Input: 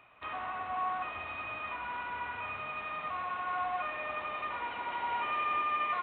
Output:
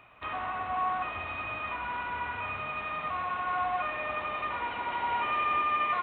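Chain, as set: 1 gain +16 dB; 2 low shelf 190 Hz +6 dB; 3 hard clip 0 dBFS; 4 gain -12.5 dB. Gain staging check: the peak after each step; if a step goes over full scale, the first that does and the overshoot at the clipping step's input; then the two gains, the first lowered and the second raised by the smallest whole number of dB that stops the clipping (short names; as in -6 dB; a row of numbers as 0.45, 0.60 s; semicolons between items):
-5.5, -5.5, -5.5, -18.0 dBFS; no overload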